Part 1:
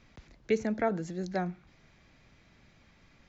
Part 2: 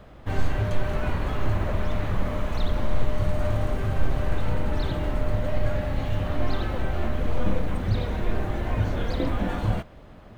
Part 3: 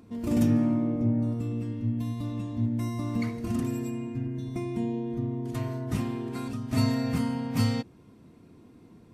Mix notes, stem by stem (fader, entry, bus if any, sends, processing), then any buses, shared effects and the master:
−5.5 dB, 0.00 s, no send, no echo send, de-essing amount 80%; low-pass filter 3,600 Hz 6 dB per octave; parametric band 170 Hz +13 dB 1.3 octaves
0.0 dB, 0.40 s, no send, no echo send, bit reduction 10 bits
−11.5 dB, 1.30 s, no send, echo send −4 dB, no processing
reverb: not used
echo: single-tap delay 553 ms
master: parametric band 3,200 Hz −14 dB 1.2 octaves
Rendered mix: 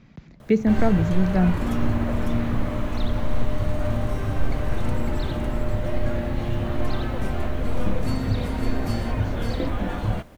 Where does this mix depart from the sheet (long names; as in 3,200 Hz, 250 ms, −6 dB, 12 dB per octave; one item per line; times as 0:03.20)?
stem 1 −5.5 dB → +3.5 dB
stem 3 −11.5 dB → −4.5 dB
master: missing parametric band 3,200 Hz −14 dB 1.2 octaves